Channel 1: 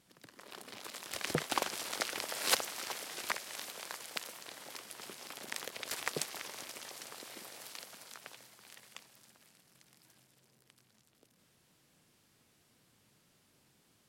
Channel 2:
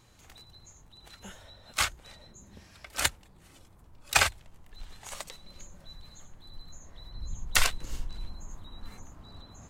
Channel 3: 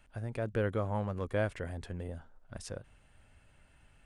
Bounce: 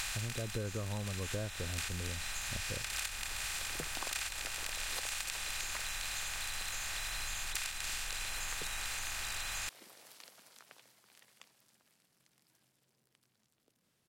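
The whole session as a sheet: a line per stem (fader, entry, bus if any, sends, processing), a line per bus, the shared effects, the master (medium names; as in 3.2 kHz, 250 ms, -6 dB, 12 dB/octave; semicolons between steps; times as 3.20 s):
-7.5 dB, 2.45 s, no send, none
-2.5 dB, 0.00 s, no send, spectral levelling over time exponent 0.2; amplifier tone stack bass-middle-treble 5-5-5
+1.5 dB, 0.00 s, no send, rippled Chebyshev low-pass 1.6 kHz, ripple 3 dB; bass shelf 180 Hz +11 dB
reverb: none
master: compression 6:1, threshold -35 dBFS, peak gain reduction 12.5 dB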